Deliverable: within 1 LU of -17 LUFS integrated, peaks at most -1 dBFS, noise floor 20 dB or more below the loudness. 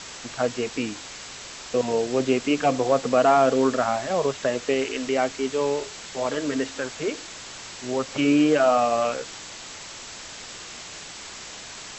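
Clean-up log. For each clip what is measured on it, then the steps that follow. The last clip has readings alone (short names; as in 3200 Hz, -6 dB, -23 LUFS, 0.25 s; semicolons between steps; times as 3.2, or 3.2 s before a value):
noise floor -40 dBFS; noise floor target -44 dBFS; loudness -23.5 LUFS; peak -8.5 dBFS; loudness target -17.0 LUFS
-> noise print and reduce 6 dB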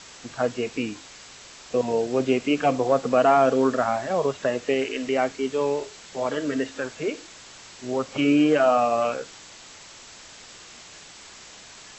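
noise floor -46 dBFS; loudness -23.5 LUFS; peak -8.5 dBFS; loudness target -17.0 LUFS
-> gain +6.5 dB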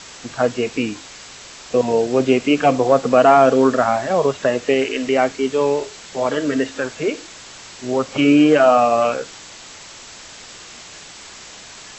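loudness -17.0 LUFS; peak -2.0 dBFS; noise floor -39 dBFS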